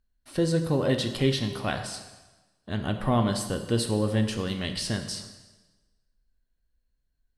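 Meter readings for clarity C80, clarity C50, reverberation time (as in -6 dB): 10.5 dB, 8.5 dB, 1.2 s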